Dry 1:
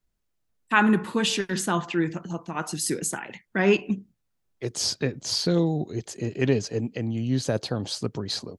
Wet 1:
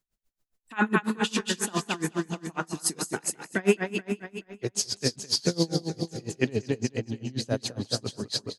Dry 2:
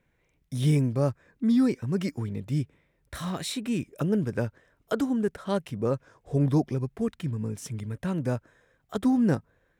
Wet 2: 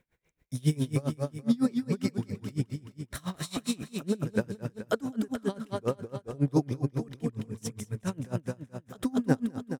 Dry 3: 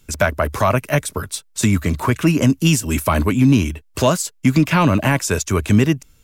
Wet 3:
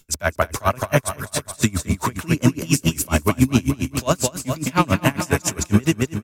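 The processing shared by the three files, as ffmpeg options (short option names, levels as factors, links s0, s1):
-af "bass=f=250:g=-1,treble=f=4000:g=4,aecho=1:1:214|428|642|856|1070|1284|1498:0.562|0.304|0.164|0.0885|0.0478|0.0258|0.0139,aeval=exprs='val(0)*pow(10,-27*(0.5-0.5*cos(2*PI*7.3*n/s))/20)':c=same,volume=1.19"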